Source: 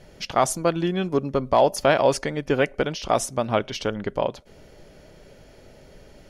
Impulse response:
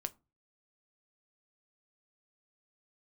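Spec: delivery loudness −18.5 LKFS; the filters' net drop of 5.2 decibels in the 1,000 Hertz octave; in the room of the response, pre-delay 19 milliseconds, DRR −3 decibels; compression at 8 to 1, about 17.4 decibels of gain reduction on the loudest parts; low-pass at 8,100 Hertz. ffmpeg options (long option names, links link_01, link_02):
-filter_complex "[0:a]lowpass=8100,equalizer=frequency=1000:width_type=o:gain=-7.5,acompressor=threshold=-35dB:ratio=8,asplit=2[link_01][link_02];[1:a]atrim=start_sample=2205,adelay=19[link_03];[link_02][link_03]afir=irnorm=-1:irlink=0,volume=4.5dB[link_04];[link_01][link_04]amix=inputs=2:normalize=0,volume=16.5dB"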